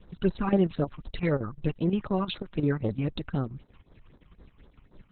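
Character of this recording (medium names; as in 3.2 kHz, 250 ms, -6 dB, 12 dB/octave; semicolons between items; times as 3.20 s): phasing stages 8, 3.9 Hz, lowest notch 490–2700 Hz; chopped level 5.7 Hz, depth 65%, duty 80%; Opus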